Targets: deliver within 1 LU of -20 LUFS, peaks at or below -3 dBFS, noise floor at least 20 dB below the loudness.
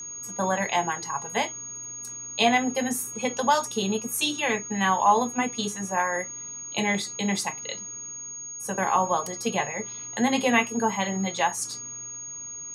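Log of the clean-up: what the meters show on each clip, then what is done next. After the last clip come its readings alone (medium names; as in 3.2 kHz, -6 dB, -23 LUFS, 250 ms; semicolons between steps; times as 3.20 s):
steady tone 6.6 kHz; tone level -35 dBFS; loudness -26.5 LUFS; peak level -6.5 dBFS; loudness target -20.0 LUFS
-> band-stop 6.6 kHz, Q 30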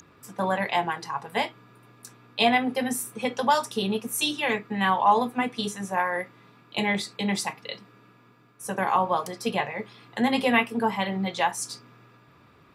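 steady tone not found; loudness -26.0 LUFS; peak level -6.5 dBFS; loudness target -20.0 LUFS
-> trim +6 dB; peak limiter -3 dBFS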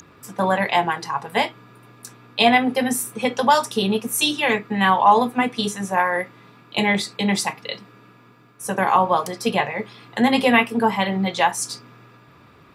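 loudness -20.5 LUFS; peak level -3.0 dBFS; noise floor -51 dBFS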